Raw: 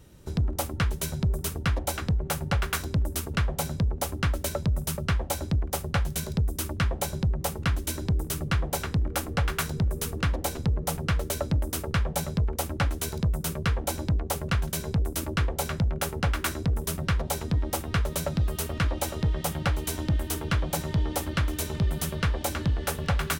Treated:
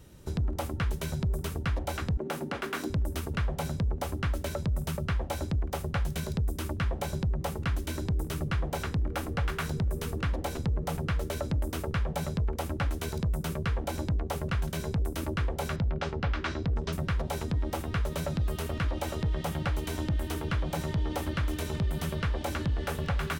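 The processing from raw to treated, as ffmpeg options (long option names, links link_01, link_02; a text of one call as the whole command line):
ffmpeg -i in.wav -filter_complex "[0:a]asettb=1/sr,asplit=3[link_01][link_02][link_03];[link_01]atrim=end=2.174[link_04];[link_02]atrim=start=2.17:end=2.9,asetpts=PTS-STARTPTS,afade=type=in:duration=0.004:curve=qsin,afade=type=out:start_time=0.726:duration=0.004:curve=qsin,highpass=frequency=270:width_type=q:width=3[link_05];[link_03]atrim=start=2.896[link_06];[link_04][link_05]acrossfade=duration=0.004:curve1=hsin:curve2=qsin[link_07];[link_07][link_06]acrossfade=duration=0.004:curve1=qsin:curve2=hsin,asettb=1/sr,asplit=3[link_08][link_09][link_10];[link_08]atrim=end=15.764[link_11];[link_09]atrim=start=15.76:end=16.93,asetpts=PTS-STARTPTS,afade=type=in:duration=0.004:curve=qsin,afade=type=out:start_time=1.166:duration=0.004:curve=qsin,lowpass=frequency=5100:width=0.5412,lowpass=frequency=5100:width=1.3066[link_12];[link_10]atrim=start=16.926[link_13];[link_11][link_12]acrossfade=duration=0.004:curve1=hsin:curve2=qsin[link_14];[link_14][link_13]acrossfade=duration=0.004:curve1=qsin:curve2=hsin,acrossover=split=3600[link_15][link_16];[link_16]acompressor=threshold=-41dB:ratio=4:attack=1:release=60[link_17];[link_15][link_17]amix=inputs=2:normalize=0,alimiter=limit=-22.5dB:level=0:latency=1:release=34" out.wav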